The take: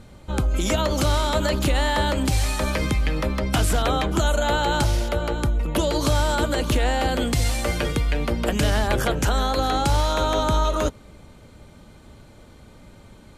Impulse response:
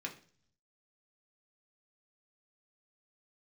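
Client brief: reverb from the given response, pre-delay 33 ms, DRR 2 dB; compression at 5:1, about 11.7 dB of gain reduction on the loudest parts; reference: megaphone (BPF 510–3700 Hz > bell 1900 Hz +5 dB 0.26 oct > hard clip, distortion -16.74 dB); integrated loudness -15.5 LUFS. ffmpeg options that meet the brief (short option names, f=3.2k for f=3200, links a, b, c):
-filter_complex "[0:a]acompressor=threshold=-30dB:ratio=5,asplit=2[a][b];[1:a]atrim=start_sample=2205,adelay=33[c];[b][c]afir=irnorm=-1:irlink=0,volume=-2.5dB[d];[a][d]amix=inputs=2:normalize=0,highpass=510,lowpass=3.7k,equalizer=f=1.9k:t=o:w=0.26:g=5,asoftclip=type=hard:threshold=-29.5dB,volume=20.5dB"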